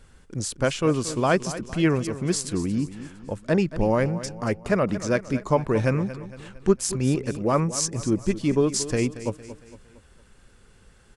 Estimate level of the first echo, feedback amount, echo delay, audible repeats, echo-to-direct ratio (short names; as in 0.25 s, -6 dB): -14.0 dB, 47%, 0.229 s, 4, -13.0 dB